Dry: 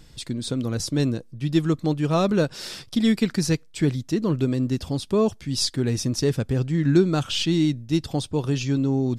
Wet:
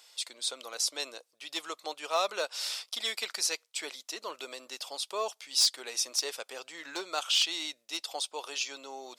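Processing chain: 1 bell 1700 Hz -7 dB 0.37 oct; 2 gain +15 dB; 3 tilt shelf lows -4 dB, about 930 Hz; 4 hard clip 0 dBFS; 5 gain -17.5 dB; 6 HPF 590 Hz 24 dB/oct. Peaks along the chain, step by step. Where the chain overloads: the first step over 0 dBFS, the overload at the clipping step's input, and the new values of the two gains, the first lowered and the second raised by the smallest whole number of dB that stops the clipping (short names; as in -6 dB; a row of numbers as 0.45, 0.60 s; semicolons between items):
-7.0, +8.0, +6.5, 0.0, -17.5, -15.5 dBFS; step 2, 6.5 dB; step 2 +8 dB, step 5 -10.5 dB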